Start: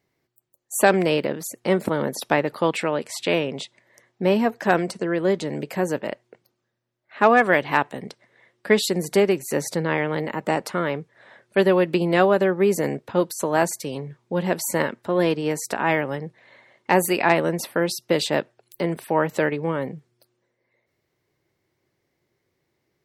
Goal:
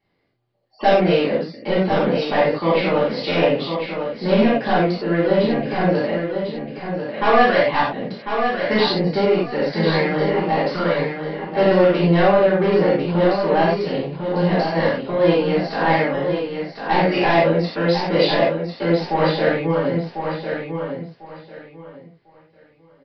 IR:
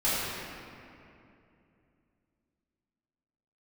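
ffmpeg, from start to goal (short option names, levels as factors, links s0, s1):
-filter_complex "[0:a]aresample=11025,asoftclip=type=tanh:threshold=0.2,aresample=44100,aecho=1:1:1048|2096|3144:0.473|0.104|0.0229[s0];[1:a]atrim=start_sample=2205,atrim=end_sample=4410,asetrate=39690,aresample=44100[s1];[s0][s1]afir=irnorm=-1:irlink=0,volume=0.596"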